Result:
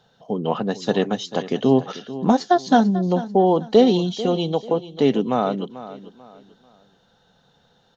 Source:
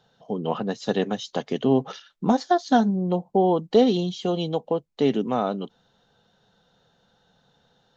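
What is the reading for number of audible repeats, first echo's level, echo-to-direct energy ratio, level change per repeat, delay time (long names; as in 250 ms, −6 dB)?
3, −15.0 dB, −14.5 dB, −10.0 dB, 441 ms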